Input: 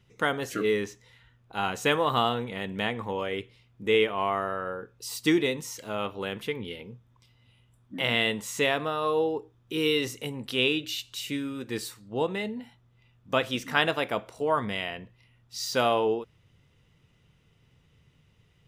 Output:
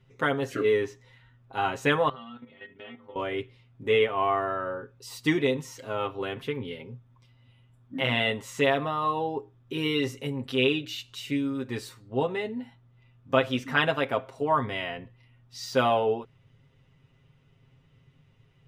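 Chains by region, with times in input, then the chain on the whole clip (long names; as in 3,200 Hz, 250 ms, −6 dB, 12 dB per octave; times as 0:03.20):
0:02.09–0:03.16: stiff-string resonator 75 Hz, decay 0.48 s, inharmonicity 0.008 + output level in coarse steps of 11 dB + Butterworth low-pass 5,600 Hz
whole clip: high-shelf EQ 4,100 Hz −11.5 dB; comb filter 7.5 ms, depth 75%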